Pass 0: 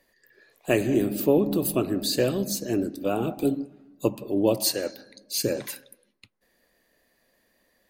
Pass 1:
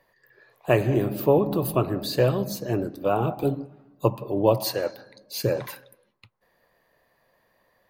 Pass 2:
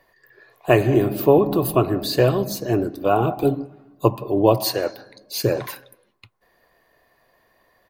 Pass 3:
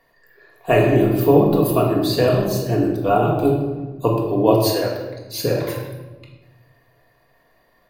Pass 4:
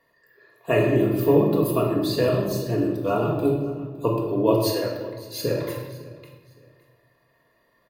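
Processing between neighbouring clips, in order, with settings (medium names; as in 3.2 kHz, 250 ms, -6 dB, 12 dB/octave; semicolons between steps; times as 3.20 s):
ten-band graphic EQ 125 Hz +11 dB, 250 Hz -6 dB, 500 Hz +3 dB, 1 kHz +11 dB, 8 kHz -9 dB; trim -1.5 dB
comb 2.8 ms, depth 30%; trim +4.5 dB
reverberation RT60 1.2 s, pre-delay 4 ms, DRR -1.5 dB; trim -2.5 dB
comb of notches 760 Hz; feedback delay 561 ms, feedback 27%, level -19.5 dB; trim -4 dB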